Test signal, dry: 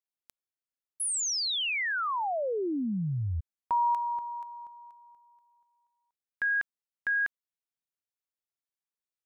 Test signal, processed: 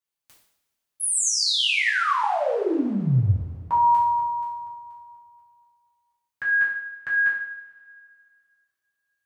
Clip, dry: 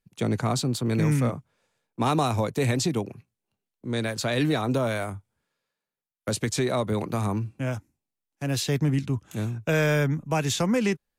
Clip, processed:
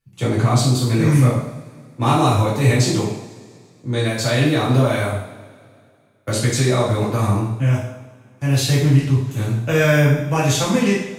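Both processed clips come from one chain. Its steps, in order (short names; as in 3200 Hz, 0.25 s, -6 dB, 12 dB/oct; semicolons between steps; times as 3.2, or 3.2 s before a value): two-slope reverb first 0.64 s, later 2.4 s, from -19 dB, DRR -8 dB; gain -1 dB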